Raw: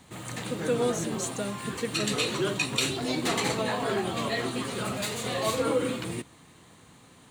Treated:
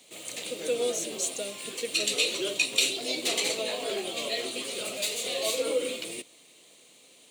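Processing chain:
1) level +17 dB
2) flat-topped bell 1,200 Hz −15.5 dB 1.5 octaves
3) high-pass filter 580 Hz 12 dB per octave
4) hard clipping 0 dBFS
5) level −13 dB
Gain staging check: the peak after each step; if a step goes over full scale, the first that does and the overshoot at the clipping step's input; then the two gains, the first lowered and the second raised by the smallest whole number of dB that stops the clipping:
+5.0, +5.0, +4.0, 0.0, −13.0 dBFS
step 1, 4.0 dB
step 1 +13 dB, step 5 −9 dB

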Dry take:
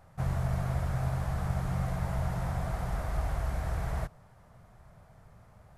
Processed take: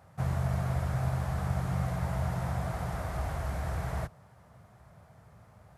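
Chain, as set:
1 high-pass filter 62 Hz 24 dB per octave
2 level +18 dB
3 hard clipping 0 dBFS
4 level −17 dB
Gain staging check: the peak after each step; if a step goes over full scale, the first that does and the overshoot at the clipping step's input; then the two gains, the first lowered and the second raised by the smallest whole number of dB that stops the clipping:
−19.5, −1.5, −1.5, −18.5 dBFS
no step passes full scale

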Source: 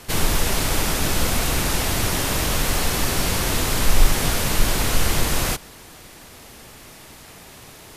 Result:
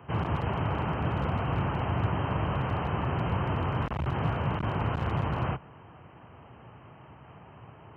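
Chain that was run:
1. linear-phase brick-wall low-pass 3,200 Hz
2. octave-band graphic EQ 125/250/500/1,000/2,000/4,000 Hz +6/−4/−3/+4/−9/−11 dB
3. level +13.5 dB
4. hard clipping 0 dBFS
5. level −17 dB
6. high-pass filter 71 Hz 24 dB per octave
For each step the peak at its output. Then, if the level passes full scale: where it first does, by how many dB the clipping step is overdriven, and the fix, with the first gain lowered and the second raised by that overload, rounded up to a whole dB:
−3.5, −4.0, +9.5, 0.0, −17.0, −17.0 dBFS
step 3, 9.5 dB
step 3 +3.5 dB, step 5 −7 dB

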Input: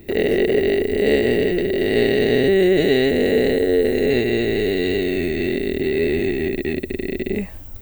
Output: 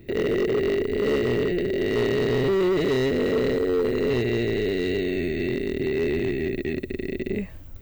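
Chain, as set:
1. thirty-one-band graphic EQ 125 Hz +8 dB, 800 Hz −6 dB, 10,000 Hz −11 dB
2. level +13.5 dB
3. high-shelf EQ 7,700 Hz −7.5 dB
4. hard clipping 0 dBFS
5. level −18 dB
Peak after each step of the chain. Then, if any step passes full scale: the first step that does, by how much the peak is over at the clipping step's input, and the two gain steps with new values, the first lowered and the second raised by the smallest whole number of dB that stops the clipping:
−5.0, +8.5, +8.5, 0.0, −18.0 dBFS
step 2, 8.5 dB
step 2 +4.5 dB, step 5 −9 dB

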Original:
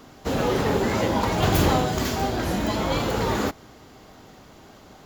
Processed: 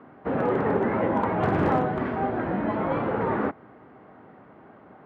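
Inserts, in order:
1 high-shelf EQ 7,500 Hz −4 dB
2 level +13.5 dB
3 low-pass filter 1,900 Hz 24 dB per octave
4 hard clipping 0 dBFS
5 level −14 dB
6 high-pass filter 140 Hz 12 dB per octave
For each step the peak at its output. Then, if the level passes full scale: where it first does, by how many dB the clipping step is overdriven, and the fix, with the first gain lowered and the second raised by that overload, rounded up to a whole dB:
−8.5, +5.0, +5.0, 0.0, −14.0, −10.0 dBFS
step 2, 5.0 dB
step 2 +8.5 dB, step 5 −9 dB

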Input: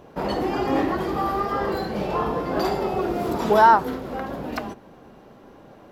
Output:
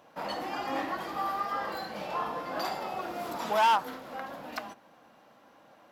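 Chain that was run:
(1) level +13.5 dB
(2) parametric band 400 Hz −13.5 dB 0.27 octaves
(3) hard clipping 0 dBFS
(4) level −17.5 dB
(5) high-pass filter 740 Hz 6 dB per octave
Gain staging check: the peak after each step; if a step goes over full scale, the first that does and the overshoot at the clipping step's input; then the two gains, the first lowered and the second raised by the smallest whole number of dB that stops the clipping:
+10.0, +9.5, 0.0, −17.5, −14.5 dBFS
step 1, 9.5 dB
step 1 +3.5 dB, step 4 −7.5 dB

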